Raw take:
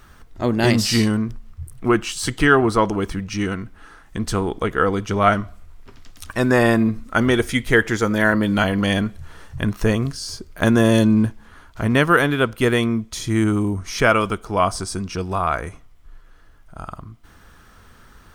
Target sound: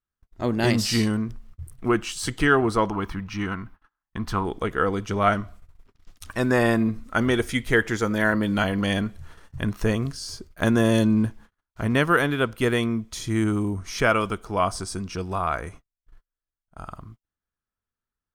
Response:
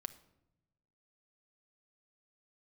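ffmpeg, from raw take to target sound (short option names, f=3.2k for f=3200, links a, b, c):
-filter_complex "[0:a]agate=range=-39dB:threshold=-38dB:ratio=16:detection=peak,asettb=1/sr,asplit=3[a][b][c];[a]atrim=end=2.884[d];[b]atrim=start=2.88:end=4.45,asetpts=PTS-STARTPTS,afade=t=in:d=0.004:c=qsin,afade=t=out:st=1.566:d=0.004:c=qsin,equalizer=f=500:t=o:w=1:g=-7,equalizer=f=1k:t=o:w=1:g=9,equalizer=f=8k:t=o:w=1:g=-11[e];[c]atrim=start=4.446[f];[d][e]acrossfade=d=0.004:c1=hsin:c2=qsin[g];[g][f]acrossfade=d=0.004:c1=qsin:c2=hsin,volume=-4.5dB"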